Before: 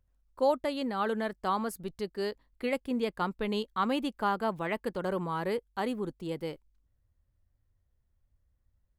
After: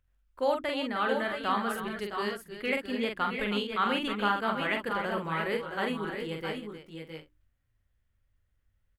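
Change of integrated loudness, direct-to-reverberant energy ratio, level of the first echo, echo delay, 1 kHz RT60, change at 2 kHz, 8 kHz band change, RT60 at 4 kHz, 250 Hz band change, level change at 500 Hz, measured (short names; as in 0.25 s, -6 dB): +1.5 dB, none, -4.5 dB, 44 ms, none, +7.5 dB, 0.0 dB, none, 0.0 dB, 0.0 dB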